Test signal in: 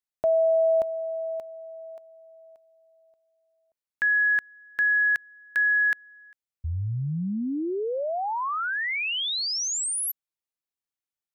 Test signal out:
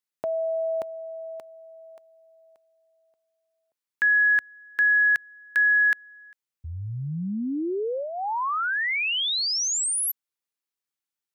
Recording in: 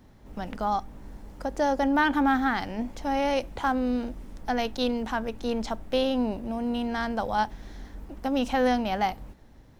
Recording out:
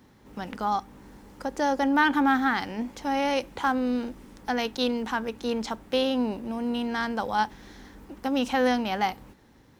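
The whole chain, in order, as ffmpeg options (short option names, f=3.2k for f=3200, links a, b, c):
-af "highpass=f=200:p=1,equalizer=f=650:t=o:w=0.36:g=-8,volume=2.5dB"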